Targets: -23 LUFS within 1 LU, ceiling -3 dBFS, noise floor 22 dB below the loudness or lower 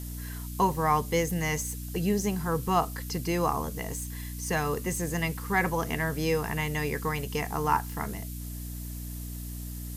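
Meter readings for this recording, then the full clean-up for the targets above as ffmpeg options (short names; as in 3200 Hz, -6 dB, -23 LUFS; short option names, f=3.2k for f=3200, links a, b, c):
hum 60 Hz; harmonics up to 300 Hz; hum level -35 dBFS; noise floor -38 dBFS; noise floor target -52 dBFS; loudness -30.0 LUFS; peak -11.0 dBFS; loudness target -23.0 LUFS
-> -af "bandreject=f=60:t=h:w=6,bandreject=f=120:t=h:w=6,bandreject=f=180:t=h:w=6,bandreject=f=240:t=h:w=6,bandreject=f=300:t=h:w=6"
-af "afftdn=nr=14:nf=-38"
-af "volume=7dB"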